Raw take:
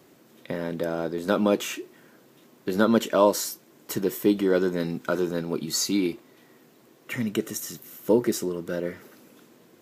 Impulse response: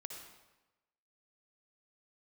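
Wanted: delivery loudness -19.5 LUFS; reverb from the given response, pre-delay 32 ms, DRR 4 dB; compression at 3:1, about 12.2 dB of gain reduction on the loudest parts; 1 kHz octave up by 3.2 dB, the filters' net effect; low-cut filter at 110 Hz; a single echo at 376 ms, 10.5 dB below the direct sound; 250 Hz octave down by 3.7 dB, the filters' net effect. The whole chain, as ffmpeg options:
-filter_complex "[0:a]highpass=110,equalizer=f=250:t=o:g=-5,equalizer=f=1000:t=o:g=4,acompressor=threshold=0.0355:ratio=3,aecho=1:1:376:0.299,asplit=2[s0][s1];[1:a]atrim=start_sample=2205,adelay=32[s2];[s1][s2]afir=irnorm=-1:irlink=0,volume=0.891[s3];[s0][s3]amix=inputs=2:normalize=0,volume=4.22"

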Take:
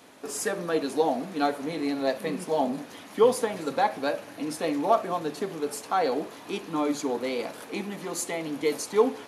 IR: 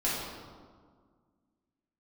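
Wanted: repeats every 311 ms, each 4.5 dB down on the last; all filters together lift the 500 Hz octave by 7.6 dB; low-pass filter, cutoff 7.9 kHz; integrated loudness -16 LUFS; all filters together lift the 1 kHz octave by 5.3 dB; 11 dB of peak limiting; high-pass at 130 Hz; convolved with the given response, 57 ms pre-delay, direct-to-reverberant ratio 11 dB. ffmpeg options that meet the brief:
-filter_complex "[0:a]highpass=130,lowpass=7900,equalizer=f=500:t=o:g=8,equalizer=f=1000:t=o:g=3.5,alimiter=limit=0.224:level=0:latency=1,aecho=1:1:311|622|933|1244|1555|1866|2177|2488|2799:0.596|0.357|0.214|0.129|0.0772|0.0463|0.0278|0.0167|0.01,asplit=2[s0][s1];[1:a]atrim=start_sample=2205,adelay=57[s2];[s1][s2]afir=irnorm=-1:irlink=0,volume=0.1[s3];[s0][s3]amix=inputs=2:normalize=0,volume=2.24"

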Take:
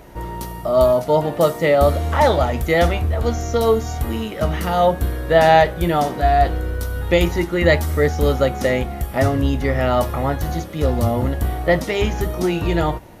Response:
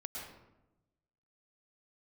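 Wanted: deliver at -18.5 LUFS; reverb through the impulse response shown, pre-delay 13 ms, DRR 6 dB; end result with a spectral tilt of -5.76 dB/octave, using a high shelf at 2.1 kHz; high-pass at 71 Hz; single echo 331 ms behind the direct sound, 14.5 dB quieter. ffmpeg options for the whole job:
-filter_complex "[0:a]highpass=71,highshelf=f=2100:g=-3.5,aecho=1:1:331:0.188,asplit=2[s0][s1];[1:a]atrim=start_sample=2205,adelay=13[s2];[s1][s2]afir=irnorm=-1:irlink=0,volume=0.531[s3];[s0][s3]amix=inputs=2:normalize=0,volume=0.944"

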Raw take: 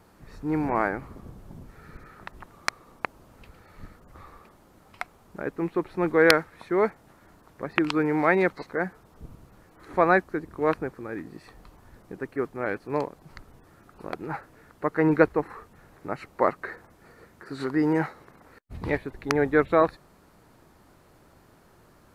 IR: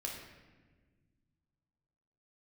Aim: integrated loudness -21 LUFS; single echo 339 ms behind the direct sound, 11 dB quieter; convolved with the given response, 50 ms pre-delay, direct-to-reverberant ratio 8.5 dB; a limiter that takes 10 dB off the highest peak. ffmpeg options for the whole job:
-filter_complex "[0:a]alimiter=limit=0.237:level=0:latency=1,aecho=1:1:339:0.282,asplit=2[s0][s1];[1:a]atrim=start_sample=2205,adelay=50[s2];[s1][s2]afir=irnorm=-1:irlink=0,volume=0.355[s3];[s0][s3]amix=inputs=2:normalize=0,volume=2.24"

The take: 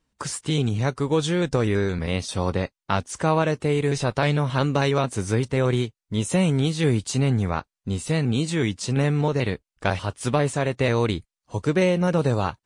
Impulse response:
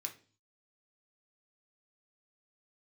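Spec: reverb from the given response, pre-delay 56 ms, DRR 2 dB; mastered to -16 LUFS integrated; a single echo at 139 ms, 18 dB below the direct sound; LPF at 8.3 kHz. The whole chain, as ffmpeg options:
-filter_complex "[0:a]lowpass=8300,aecho=1:1:139:0.126,asplit=2[s0][s1];[1:a]atrim=start_sample=2205,adelay=56[s2];[s1][s2]afir=irnorm=-1:irlink=0,volume=1[s3];[s0][s3]amix=inputs=2:normalize=0,volume=2.11"

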